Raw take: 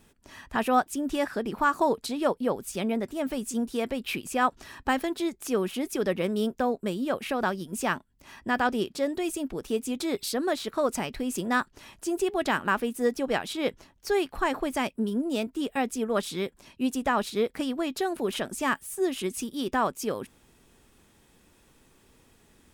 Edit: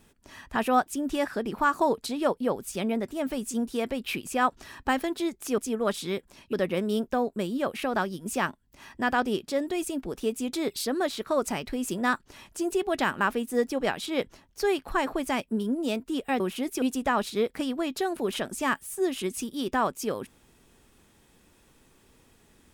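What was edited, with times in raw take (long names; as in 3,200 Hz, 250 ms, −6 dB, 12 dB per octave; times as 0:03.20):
0:05.58–0:06.00: swap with 0:15.87–0:16.82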